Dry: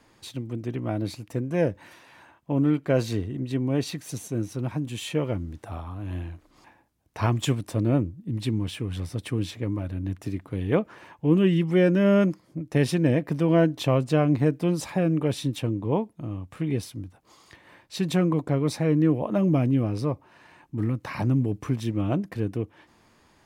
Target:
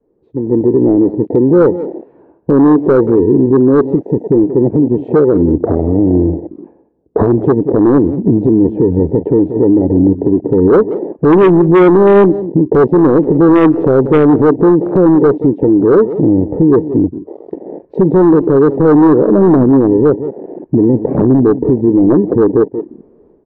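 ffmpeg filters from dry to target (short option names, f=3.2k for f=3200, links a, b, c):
-filter_complex "[0:a]lowpass=f=430:t=q:w=5,adynamicequalizer=threshold=0.0501:dfrequency=320:dqfactor=2.1:tfrequency=320:tqfactor=2.1:attack=5:release=100:ratio=0.375:range=2:mode=boostabove:tftype=bell,asoftclip=type=hard:threshold=-13dB,asettb=1/sr,asplit=3[a][b][c];[a]atrim=end=4.434[d];[b]atrim=start=4.43:end=7.47,asetpts=PTS-STARTPTS,afade=t=in:d=0.004:c=qsin,afade=t=out:st=3.036:d=0.004:c=qsin,highpass=67[e];[c]atrim=start=7.466[f];[d][e]acrossfade=d=0.004:c1=hsin:c2=qsin[g];[g][f]acrossfade=d=0.004:c1=qsin:c2=hsin,acompressor=threshold=-28dB:ratio=6,aeval=exprs='0.119*(cos(1*acos(clip(val(0)/0.119,-1,1)))-cos(1*PI/2))+0.0133*(cos(5*acos(clip(val(0)/0.119,-1,1)))-cos(5*PI/2))+0.00422*(cos(7*acos(clip(val(0)/0.119,-1,1)))-cos(7*PI/2))':c=same,dynaudnorm=f=370:g=3:m=15dB,equalizer=f=100:t=o:w=0.7:g=-10,asplit=2[h][i];[i]adelay=180.8,volume=-16dB,highshelf=f=4k:g=-4.07[j];[h][j]amix=inputs=2:normalize=0,afwtdn=0.0562,alimiter=level_in=11.5dB:limit=-1dB:release=50:level=0:latency=1,volume=-1dB"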